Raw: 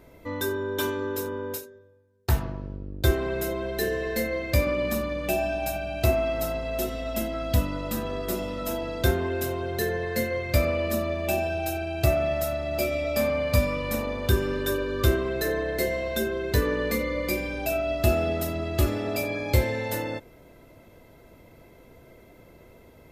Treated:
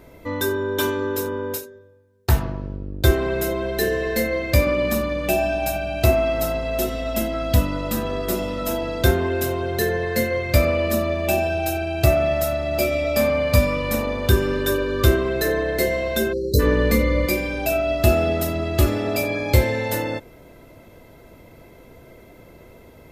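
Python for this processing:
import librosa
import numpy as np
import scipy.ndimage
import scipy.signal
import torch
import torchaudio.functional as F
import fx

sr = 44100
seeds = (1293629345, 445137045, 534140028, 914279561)

y = fx.spec_erase(x, sr, start_s=16.33, length_s=0.27, low_hz=600.0, high_hz=3900.0)
y = fx.low_shelf(y, sr, hz=170.0, db=11.5, at=(16.63, 17.26))
y = F.gain(torch.from_numpy(y), 5.5).numpy()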